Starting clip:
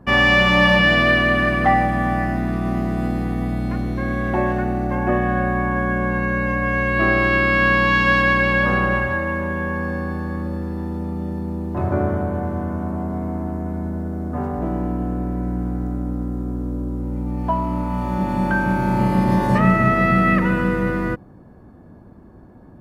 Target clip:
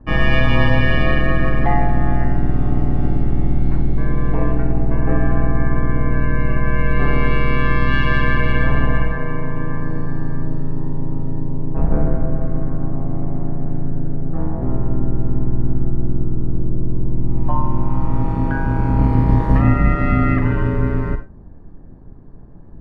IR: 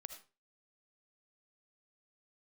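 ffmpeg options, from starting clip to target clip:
-filter_complex "[0:a]aeval=exprs='val(0)*sin(2*PI*70*n/s)':channel_layout=same,aemphasis=mode=reproduction:type=bsi[link_01];[1:a]atrim=start_sample=2205,asetrate=66150,aresample=44100[link_02];[link_01][link_02]afir=irnorm=-1:irlink=0,volume=7dB"

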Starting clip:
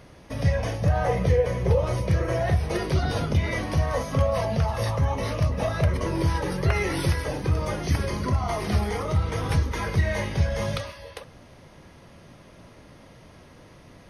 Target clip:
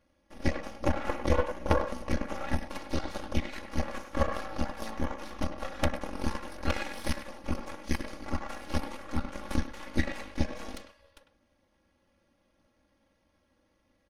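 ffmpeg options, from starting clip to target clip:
ffmpeg -i in.wav -filter_complex "[0:a]aeval=exprs='0.355*(cos(1*acos(clip(val(0)/0.355,-1,1)))-cos(1*PI/2))+0.1*(cos(2*acos(clip(val(0)/0.355,-1,1)))-cos(2*PI/2))+0.126*(cos(3*acos(clip(val(0)/0.355,-1,1)))-cos(3*PI/2))+0.0631*(cos(4*acos(clip(val(0)/0.355,-1,1)))-cos(4*PI/2))':channel_layout=same,aecho=1:1:3.6:0.8,asplit=2[link_01][link_02];[link_02]adelay=100,highpass=300,lowpass=3400,asoftclip=type=hard:threshold=-14dB,volume=-9dB[link_03];[link_01][link_03]amix=inputs=2:normalize=0" out.wav

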